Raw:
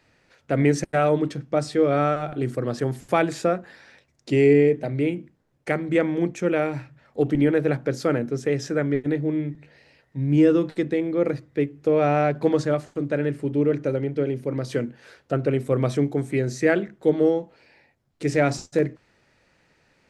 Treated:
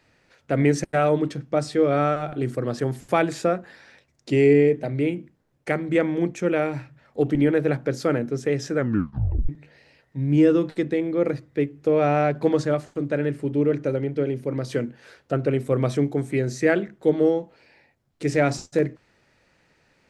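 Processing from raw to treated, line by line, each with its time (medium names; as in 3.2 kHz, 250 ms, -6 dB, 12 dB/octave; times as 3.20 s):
8.77 s: tape stop 0.72 s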